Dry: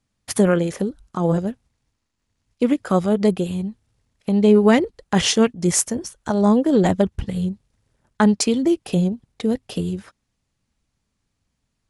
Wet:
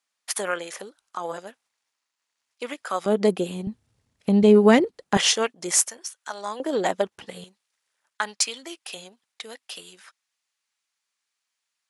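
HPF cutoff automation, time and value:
910 Hz
from 3.06 s 280 Hz
from 3.67 s 77 Hz
from 4.43 s 190 Hz
from 5.17 s 630 Hz
from 5.89 s 1300 Hz
from 6.6 s 570 Hz
from 7.44 s 1300 Hz

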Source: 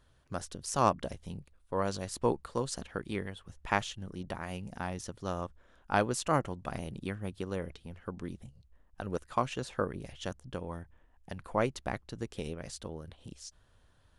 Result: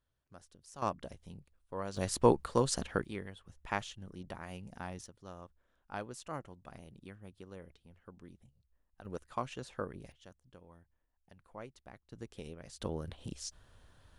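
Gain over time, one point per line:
-18 dB
from 0.82 s -8 dB
from 1.97 s +4 dB
from 3.05 s -6 dB
from 5.06 s -13.5 dB
from 9.05 s -7 dB
from 10.12 s -18 dB
from 12.12 s -8 dB
from 12.81 s +4 dB

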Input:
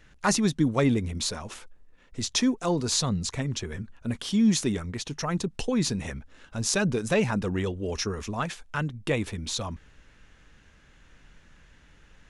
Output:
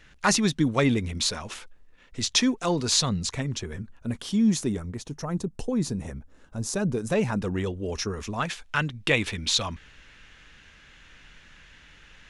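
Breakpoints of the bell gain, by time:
bell 2900 Hz 2.4 oct
3.07 s +5.5 dB
3.79 s -3 dB
4.3 s -3 dB
5.12 s -11.5 dB
6.78 s -11.5 dB
7.39 s -1 dB
8.11 s -1 dB
8.84 s +10.5 dB

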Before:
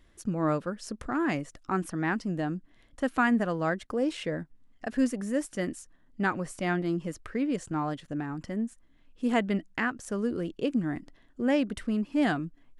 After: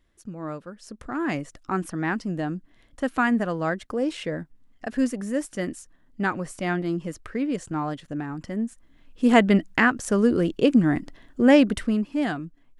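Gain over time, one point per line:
0.68 s -6.5 dB
1.35 s +2.5 dB
8.46 s +2.5 dB
9.42 s +10 dB
11.68 s +10 dB
12.26 s -0.5 dB

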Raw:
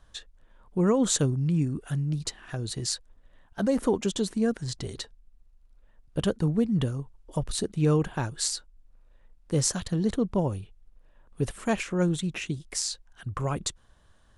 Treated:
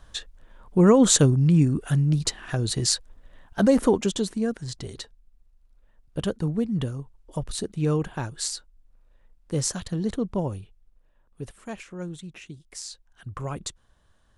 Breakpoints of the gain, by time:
3.66 s +7 dB
4.48 s -1 dB
10.54 s -1 dB
11.62 s -10 dB
12.59 s -10 dB
13.27 s -3 dB

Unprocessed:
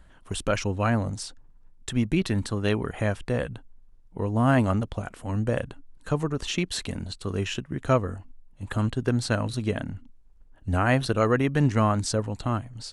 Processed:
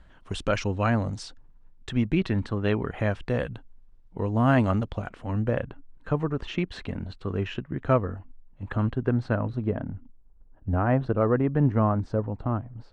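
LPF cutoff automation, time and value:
1.22 s 5200 Hz
2.62 s 2500 Hz
3.37 s 4800 Hz
4.83 s 4800 Hz
5.7 s 2200 Hz
8.71 s 2200 Hz
9.72 s 1100 Hz

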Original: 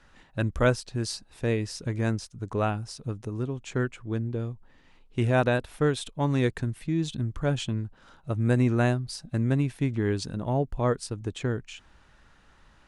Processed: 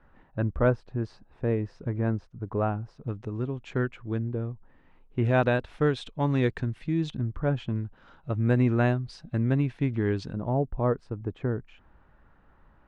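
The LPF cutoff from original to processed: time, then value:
1300 Hz
from 3.08 s 3000 Hz
from 4.28 s 1700 Hz
from 5.25 s 3700 Hz
from 7.1 s 1800 Hz
from 7.76 s 3100 Hz
from 10.33 s 1300 Hz

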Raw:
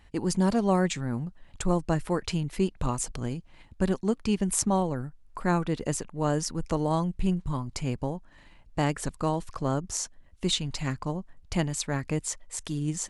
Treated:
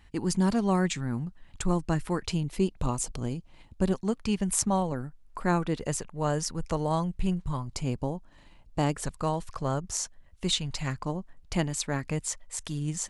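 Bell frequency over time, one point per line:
bell -5.5 dB 0.85 oct
560 Hz
from 2.26 s 1700 Hz
from 3.93 s 330 Hz
from 4.92 s 90 Hz
from 5.77 s 280 Hz
from 7.72 s 1800 Hz
from 9.02 s 290 Hz
from 11.01 s 89 Hz
from 12.07 s 340 Hz

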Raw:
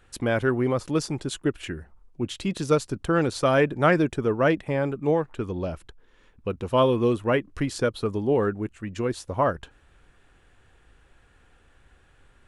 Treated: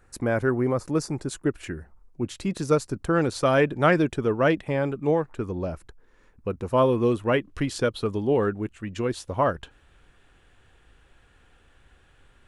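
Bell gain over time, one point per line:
bell 3200 Hz 0.64 oct
1.03 s -14 dB
1.61 s -7.5 dB
3 s -7.5 dB
3.67 s +1.5 dB
4.96 s +1.5 dB
5.5 s -9 dB
6.78 s -9 dB
7.37 s +3 dB

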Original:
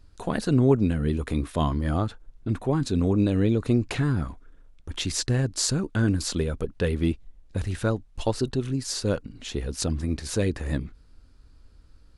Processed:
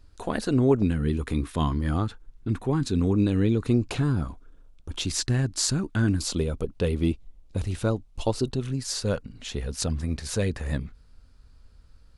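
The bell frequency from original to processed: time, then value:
bell -8.5 dB 0.44 oct
160 Hz
from 0.82 s 610 Hz
from 3.74 s 1900 Hz
from 5.11 s 490 Hz
from 6.2 s 1700 Hz
from 8.56 s 320 Hz

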